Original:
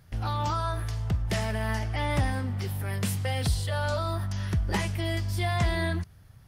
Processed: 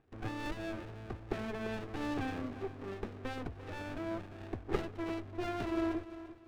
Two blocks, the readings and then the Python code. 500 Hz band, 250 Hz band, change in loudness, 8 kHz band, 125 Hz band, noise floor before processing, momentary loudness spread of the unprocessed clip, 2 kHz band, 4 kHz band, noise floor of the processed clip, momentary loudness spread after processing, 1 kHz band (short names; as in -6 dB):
-5.5 dB, -3.0 dB, -10.5 dB, -20.5 dB, -18.0 dB, -53 dBFS, 5 LU, -11.0 dB, -14.5 dB, -51 dBFS, 8 LU, -10.5 dB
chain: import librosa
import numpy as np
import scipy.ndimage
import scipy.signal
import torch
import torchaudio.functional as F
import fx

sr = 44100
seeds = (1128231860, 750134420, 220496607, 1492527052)

y = scipy.signal.sosfilt(scipy.signal.butter(2, 290.0, 'highpass', fs=sr, output='sos'), x)
y = fx.fixed_phaser(y, sr, hz=870.0, stages=8)
y = np.repeat(scipy.signal.resample_poly(y, 1, 8), 8)[:len(y)]
y = scipy.signal.sosfilt(scipy.signal.butter(2, 1200.0, 'lowpass', fs=sr, output='sos'), y)
y = fx.echo_feedback(y, sr, ms=344, feedback_pct=33, wet_db=-14)
y = fx.running_max(y, sr, window=33)
y = y * 10.0 ** (4.0 / 20.0)